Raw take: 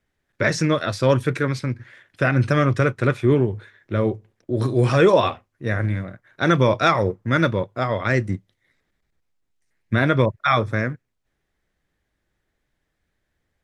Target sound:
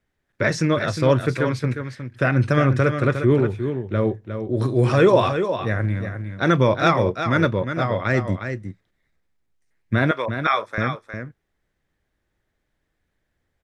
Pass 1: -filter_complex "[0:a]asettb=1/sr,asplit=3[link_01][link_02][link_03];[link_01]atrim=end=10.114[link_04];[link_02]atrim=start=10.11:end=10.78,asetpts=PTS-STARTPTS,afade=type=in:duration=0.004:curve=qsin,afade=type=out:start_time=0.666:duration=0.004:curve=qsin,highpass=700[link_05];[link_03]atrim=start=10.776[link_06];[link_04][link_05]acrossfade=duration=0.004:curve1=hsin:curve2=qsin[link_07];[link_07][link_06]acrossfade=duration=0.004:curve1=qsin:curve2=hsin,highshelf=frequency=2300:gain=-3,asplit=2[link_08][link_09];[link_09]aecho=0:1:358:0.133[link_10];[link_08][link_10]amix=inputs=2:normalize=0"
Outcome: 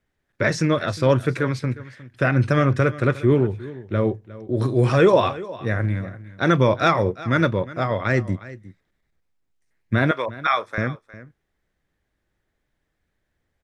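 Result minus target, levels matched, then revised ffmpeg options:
echo-to-direct −9.5 dB
-filter_complex "[0:a]asettb=1/sr,asplit=3[link_01][link_02][link_03];[link_01]atrim=end=10.114[link_04];[link_02]atrim=start=10.11:end=10.78,asetpts=PTS-STARTPTS,afade=type=in:duration=0.004:curve=qsin,afade=type=out:start_time=0.666:duration=0.004:curve=qsin,highpass=700[link_05];[link_03]atrim=start=10.776[link_06];[link_04][link_05]acrossfade=duration=0.004:curve1=hsin:curve2=qsin[link_07];[link_07][link_06]acrossfade=duration=0.004:curve1=qsin:curve2=hsin,highshelf=frequency=2300:gain=-3,asplit=2[link_08][link_09];[link_09]aecho=0:1:358:0.398[link_10];[link_08][link_10]amix=inputs=2:normalize=0"

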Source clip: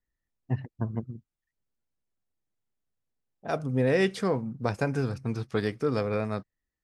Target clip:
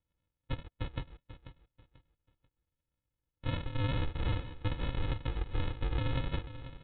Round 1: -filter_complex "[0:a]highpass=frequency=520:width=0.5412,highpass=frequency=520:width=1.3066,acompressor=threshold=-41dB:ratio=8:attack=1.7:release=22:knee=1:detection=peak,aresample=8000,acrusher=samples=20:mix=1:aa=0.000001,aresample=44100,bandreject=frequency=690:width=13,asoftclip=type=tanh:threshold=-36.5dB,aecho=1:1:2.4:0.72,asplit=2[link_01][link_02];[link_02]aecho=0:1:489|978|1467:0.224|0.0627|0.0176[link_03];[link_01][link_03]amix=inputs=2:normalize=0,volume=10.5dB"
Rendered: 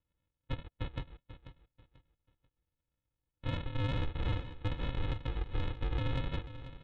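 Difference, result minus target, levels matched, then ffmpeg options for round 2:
soft clipping: distortion +20 dB
-filter_complex "[0:a]highpass=frequency=520:width=0.5412,highpass=frequency=520:width=1.3066,acompressor=threshold=-41dB:ratio=8:attack=1.7:release=22:knee=1:detection=peak,aresample=8000,acrusher=samples=20:mix=1:aa=0.000001,aresample=44100,bandreject=frequency=690:width=13,asoftclip=type=tanh:threshold=-25dB,aecho=1:1:2.4:0.72,asplit=2[link_01][link_02];[link_02]aecho=0:1:489|978|1467:0.224|0.0627|0.0176[link_03];[link_01][link_03]amix=inputs=2:normalize=0,volume=10.5dB"

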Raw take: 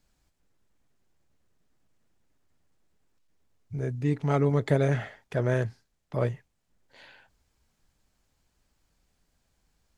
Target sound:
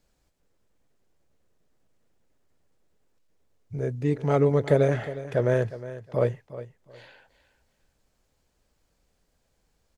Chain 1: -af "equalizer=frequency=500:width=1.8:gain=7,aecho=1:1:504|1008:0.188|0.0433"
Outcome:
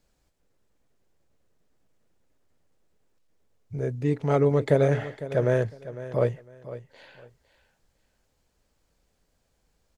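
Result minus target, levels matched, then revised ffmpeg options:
echo 143 ms late
-af "equalizer=frequency=500:width=1.8:gain=7,aecho=1:1:361|722:0.188|0.0433"

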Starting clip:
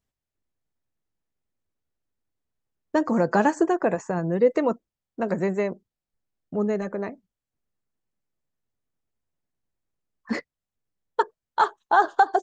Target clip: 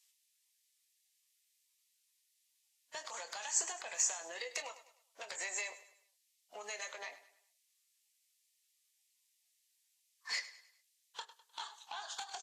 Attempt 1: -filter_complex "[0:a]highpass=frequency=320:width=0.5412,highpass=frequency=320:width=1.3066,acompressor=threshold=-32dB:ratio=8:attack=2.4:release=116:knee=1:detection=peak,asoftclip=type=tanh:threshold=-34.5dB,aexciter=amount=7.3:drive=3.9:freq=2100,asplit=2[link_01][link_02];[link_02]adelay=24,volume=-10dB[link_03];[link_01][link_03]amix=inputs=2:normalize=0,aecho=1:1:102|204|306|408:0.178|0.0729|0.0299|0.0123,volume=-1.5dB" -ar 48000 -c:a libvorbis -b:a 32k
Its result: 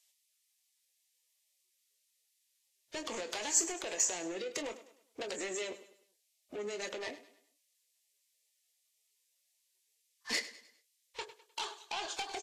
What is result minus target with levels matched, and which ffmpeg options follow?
250 Hz band +19.0 dB; downward compressor: peak gain reduction −6 dB
-filter_complex "[0:a]highpass=frequency=760:width=0.5412,highpass=frequency=760:width=1.3066,acompressor=threshold=-41dB:ratio=8:attack=2.4:release=116:knee=1:detection=peak,asoftclip=type=tanh:threshold=-34.5dB,aexciter=amount=7.3:drive=3.9:freq=2100,asplit=2[link_01][link_02];[link_02]adelay=24,volume=-10dB[link_03];[link_01][link_03]amix=inputs=2:normalize=0,aecho=1:1:102|204|306|408:0.178|0.0729|0.0299|0.0123,volume=-1.5dB" -ar 48000 -c:a libvorbis -b:a 32k

